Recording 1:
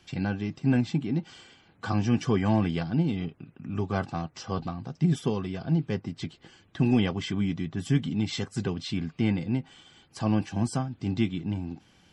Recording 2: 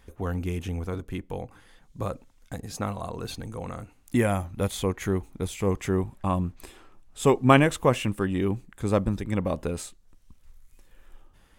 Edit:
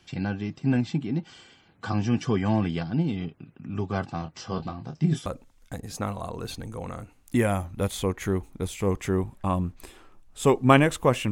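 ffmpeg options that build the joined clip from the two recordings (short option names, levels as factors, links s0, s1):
-filter_complex "[0:a]asettb=1/sr,asplit=3[s0][s1][s2];[s0]atrim=end=4.194[s3];[s1]atrim=start=4.19:end=5.26,asetpts=PTS-STARTPTS,afade=t=in:d=0.004:c=qsin,afade=t=out:st=1.066:d=0.004:c=qsin,asplit=2[s4][s5];[s5]adelay=26,volume=0.422[s6];[s4][s6]amix=inputs=2:normalize=0,atrim=end_sample=47187[s7];[s2]atrim=start=5.256[s8];[s3][s7]acrossfade=d=0.004:c1=hsin:c2=qsin[s9];[s9][s8]acrossfade=d=0.004:c1=qsin:c2=hsin,apad=whole_dur=11.31,atrim=end=11.31,atrim=end=5.262[s10];[1:a]atrim=start=2.058:end=8.11[s11];[s10][s11]acrossfade=d=0.004:c1=hsin:c2=hsin"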